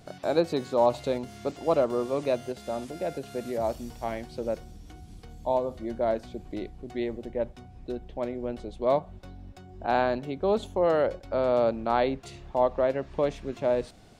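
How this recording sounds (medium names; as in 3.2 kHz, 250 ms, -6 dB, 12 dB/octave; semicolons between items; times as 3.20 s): noise floor -49 dBFS; spectral tilt -5.0 dB/octave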